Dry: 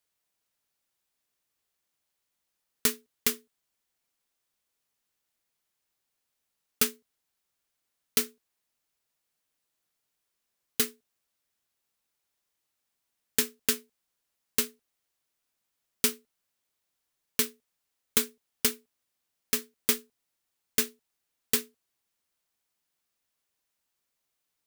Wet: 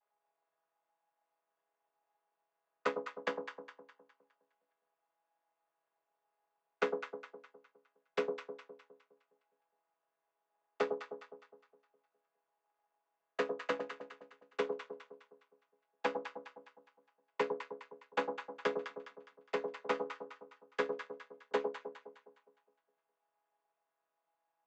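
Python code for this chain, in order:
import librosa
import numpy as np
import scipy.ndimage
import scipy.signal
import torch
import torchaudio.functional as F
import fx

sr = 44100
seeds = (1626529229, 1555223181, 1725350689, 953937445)

p1 = fx.chord_vocoder(x, sr, chord='minor triad', root=49)
p2 = fx.ladder_bandpass(p1, sr, hz=930.0, resonance_pct=40)
p3 = fx.peak_eq(p2, sr, hz=880.0, db=5.5, octaves=0.24)
p4 = p3 + fx.echo_alternate(p3, sr, ms=103, hz=930.0, feedback_pct=65, wet_db=-4.5, dry=0)
y = p4 * librosa.db_to_amplitude(17.0)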